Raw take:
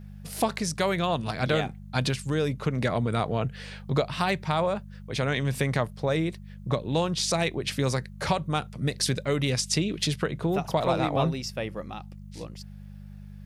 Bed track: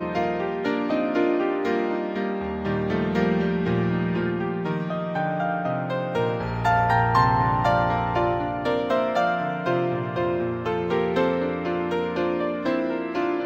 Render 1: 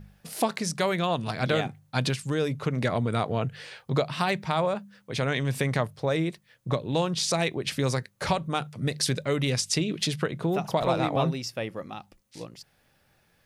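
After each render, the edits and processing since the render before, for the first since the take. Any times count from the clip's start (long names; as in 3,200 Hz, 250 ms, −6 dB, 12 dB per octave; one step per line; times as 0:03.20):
hum removal 50 Hz, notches 4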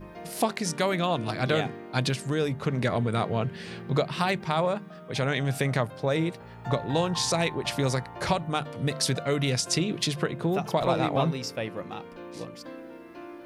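mix in bed track −18 dB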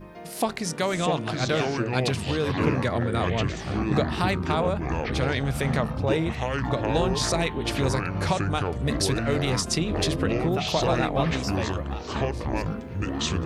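delay with pitch and tempo change per echo 468 ms, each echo −6 semitones, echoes 3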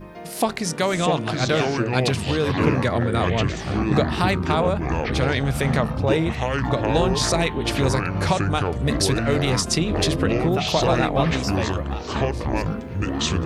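level +4 dB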